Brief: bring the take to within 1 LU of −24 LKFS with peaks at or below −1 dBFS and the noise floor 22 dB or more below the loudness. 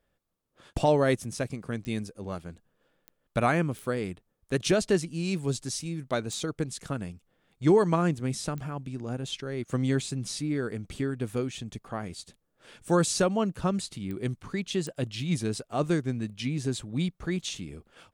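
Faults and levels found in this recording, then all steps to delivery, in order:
number of clicks 7; integrated loudness −29.5 LKFS; sample peak −12.5 dBFS; target loudness −24.0 LKFS
→ click removal
level +5.5 dB

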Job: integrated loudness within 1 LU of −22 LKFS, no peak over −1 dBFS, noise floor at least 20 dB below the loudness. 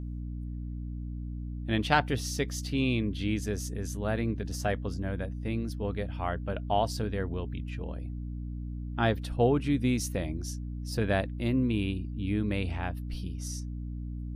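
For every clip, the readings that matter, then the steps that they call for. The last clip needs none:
mains hum 60 Hz; hum harmonics up to 300 Hz; level of the hum −34 dBFS; integrated loudness −32.0 LKFS; sample peak −9.0 dBFS; target loudness −22.0 LKFS
→ hum removal 60 Hz, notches 5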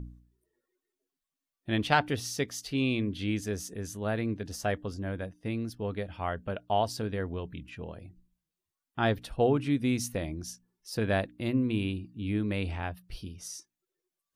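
mains hum none found; integrated loudness −31.5 LKFS; sample peak −9.0 dBFS; target loudness −22.0 LKFS
→ level +9.5 dB
brickwall limiter −1 dBFS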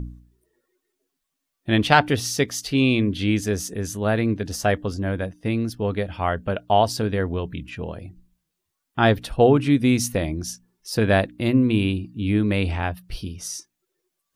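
integrated loudness −22.5 LKFS; sample peak −1.0 dBFS; background noise floor −80 dBFS

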